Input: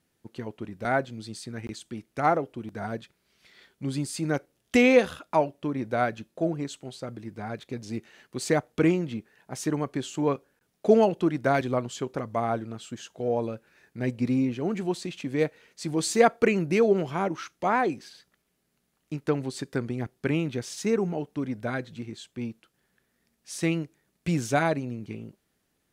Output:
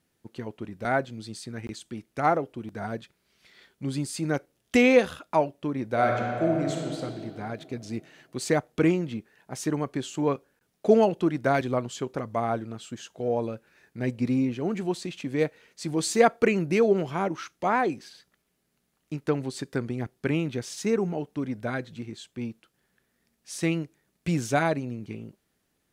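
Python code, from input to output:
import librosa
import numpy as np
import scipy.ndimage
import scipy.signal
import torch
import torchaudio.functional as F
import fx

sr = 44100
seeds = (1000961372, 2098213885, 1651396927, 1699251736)

y = fx.reverb_throw(x, sr, start_s=5.87, length_s=1.11, rt60_s=2.6, drr_db=-0.5)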